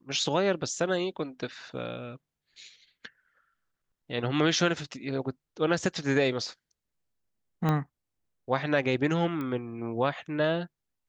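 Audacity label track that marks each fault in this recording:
7.690000	7.690000	pop -15 dBFS
9.410000	9.410000	pop -23 dBFS

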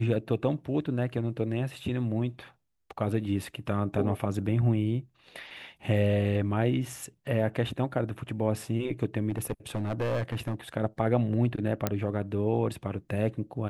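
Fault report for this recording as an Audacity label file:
9.300000	10.540000	clipped -25 dBFS
11.870000	11.870000	pop -11 dBFS

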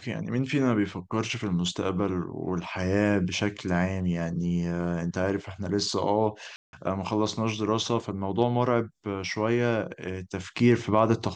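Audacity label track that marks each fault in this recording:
6.560000	6.730000	gap 0.171 s

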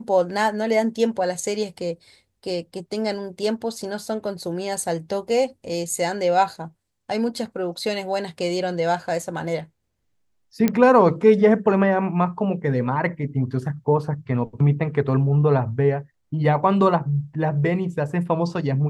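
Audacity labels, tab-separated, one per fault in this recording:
10.680000	10.680000	pop -7 dBFS

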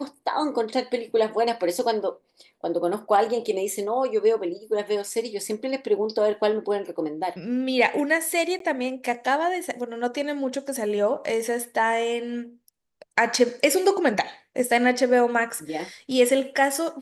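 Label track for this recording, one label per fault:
8.590000	8.600000	gap 13 ms

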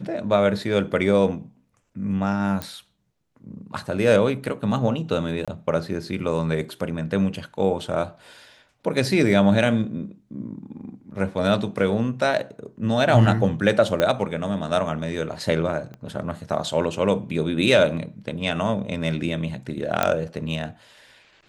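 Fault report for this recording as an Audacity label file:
2.620000	2.620000	pop -13 dBFS
5.450000	5.480000	gap 26 ms
14.000000	14.000000	pop -8 dBFS
15.940000	15.940000	pop -26 dBFS
20.030000	20.030000	pop -5 dBFS

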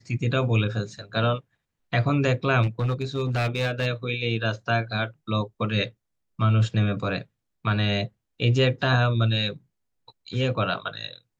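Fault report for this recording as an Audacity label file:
2.620000	3.870000	clipped -20 dBFS

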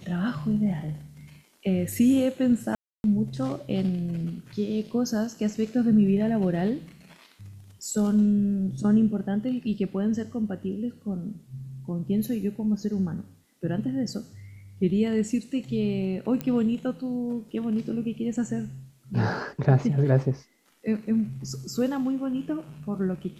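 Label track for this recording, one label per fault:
2.750000	3.040000	gap 0.291 s
16.410000	16.410000	pop -16 dBFS

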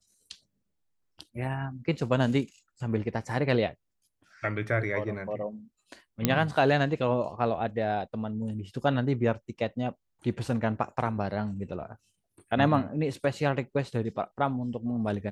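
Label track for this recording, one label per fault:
6.250000	6.250000	pop -7 dBFS

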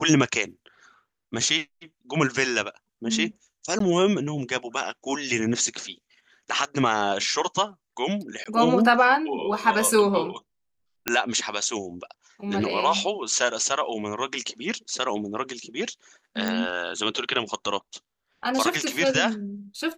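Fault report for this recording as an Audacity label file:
3.790000	3.800000	gap 13 ms
6.650000	6.650000	gap 2.5 ms
8.440000	8.460000	gap 16 ms
11.080000	11.080000	pop -4 dBFS
16.480000	16.480000	pop

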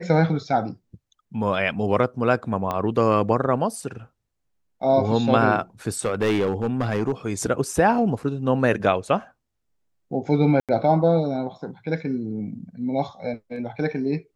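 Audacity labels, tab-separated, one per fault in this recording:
2.710000	2.710000	pop -13 dBFS
5.990000	7.120000	clipped -17 dBFS
10.600000	10.690000	gap 87 ms

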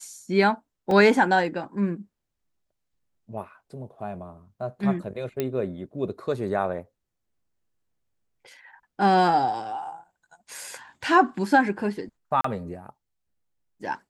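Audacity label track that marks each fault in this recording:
0.910000	0.910000	gap 2.2 ms
5.400000	5.400000	pop -13 dBFS
12.410000	12.440000	gap 34 ms

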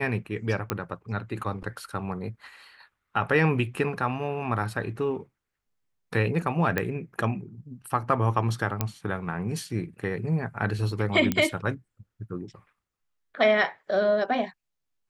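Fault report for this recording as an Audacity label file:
0.700000	0.700000	pop -11 dBFS
6.780000	6.780000	pop -12 dBFS
8.810000	8.810000	pop -10 dBFS
11.320000	11.320000	pop -11 dBFS

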